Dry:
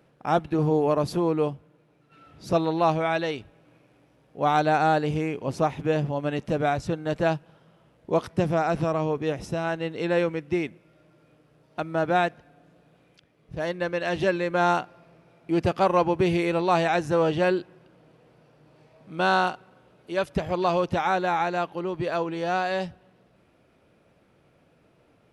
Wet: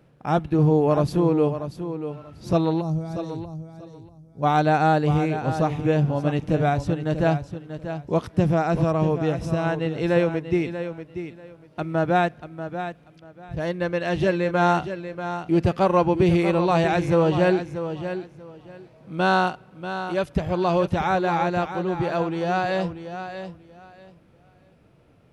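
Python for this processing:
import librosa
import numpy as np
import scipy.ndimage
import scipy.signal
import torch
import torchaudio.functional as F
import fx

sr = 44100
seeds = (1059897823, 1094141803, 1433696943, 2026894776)

y = fx.curve_eq(x, sr, hz=(140.0, 2800.0, 5400.0), db=(0, -29, -5), at=(2.8, 4.42), fade=0.02)
y = fx.hpss(y, sr, part='harmonic', gain_db=3)
y = fx.low_shelf(y, sr, hz=180.0, db=9.5)
y = fx.echo_feedback(y, sr, ms=638, feedback_pct=20, wet_db=-10.0)
y = y * librosa.db_to_amplitude(-1.5)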